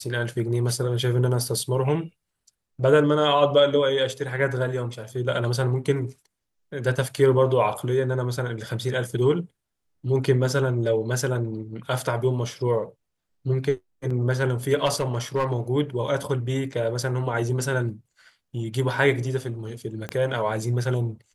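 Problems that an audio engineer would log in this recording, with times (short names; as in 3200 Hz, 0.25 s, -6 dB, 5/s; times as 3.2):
14.85–15.53 clipped -17.5 dBFS
20.09 pop -16 dBFS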